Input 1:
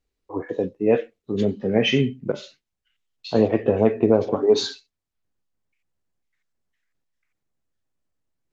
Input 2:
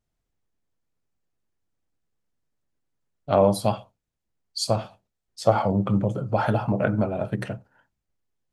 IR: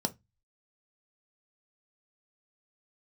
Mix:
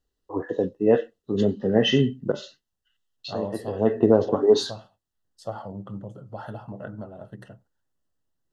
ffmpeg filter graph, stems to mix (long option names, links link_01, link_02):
-filter_complex "[0:a]volume=0dB[link_01];[1:a]agate=range=-15dB:threshold=-45dB:ratio=16:detection=peak,volume=-14dB,asplit=2[link_02][link_03];[link_03]apad=whole_len=375858[link_04];[link_01][link_04]sidechaincompress=threshold=-40dB:ratio=6:attack=7.2:release=255[link_05];[link_05][link_02]amix=inputs=2:normalize=0,asuperstop=centerf=2300:order=12:qfactor=3.9"